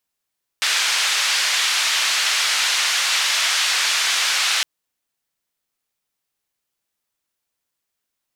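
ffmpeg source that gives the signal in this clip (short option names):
-f lavfi -i "anoisesrc=c=white:d=4.01:r=44100:seed=1,highpass=f=1400,lowpass=f=4900,volume=-7dB"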